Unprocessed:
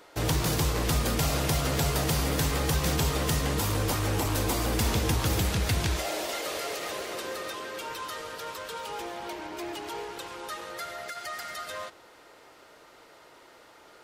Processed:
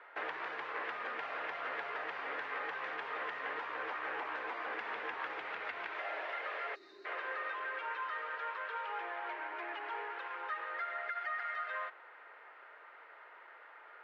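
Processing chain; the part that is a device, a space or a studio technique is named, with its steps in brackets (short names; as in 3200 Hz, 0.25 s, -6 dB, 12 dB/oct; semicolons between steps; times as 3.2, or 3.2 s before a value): 5.33–5.98 notch 1700 Hz, Q 14; 6.75–7.05 spectral gain 430–3600 Hz -25 dB; HPF 1000 Hz 12 dB/oct; bass amplifier (compressor 4:1, threshold -36 dBFS, peak gain reduction 8 dB; speaker cabinet 71–2200 Hz, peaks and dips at 120 Hz -9 dB, 180 Hz -7 dB, 430 Hz +4 dB, 1700 Hz +4 dB); gain +2 dB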